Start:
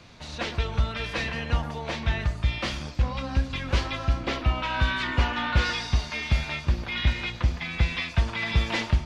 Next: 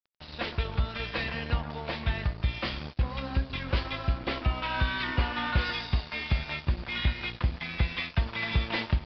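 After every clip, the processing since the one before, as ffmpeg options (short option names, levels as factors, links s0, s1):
-af "acompressor=threshold=0.0501:ratio=1.5,aresample=11025,aeval=exprs='sgn(val(0))*max(abs(val(0))-0.00841,0)':c=same,aresample=44100"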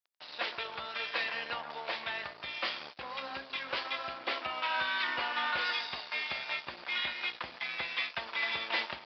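-af "highpass=620"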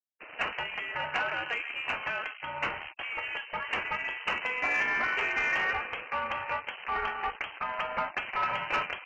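-af "lowpass=f=2800:t=q:w=0.5098,lowpass=f=2800:t=q:w=0.6013,lowpass=f=2800:t=q:w=0.9,lowpass=f=2800:t=q:w=2.563,afreqshift=-3300,afftfilt=real='re*gte(hypot(re,im),0.00224)':imag='im*gte(hypot(re,im),0.00224)':win_size=1024:overlap=0.75,asoftclip=type=tanh:threshold=0.0631,volume=1.88"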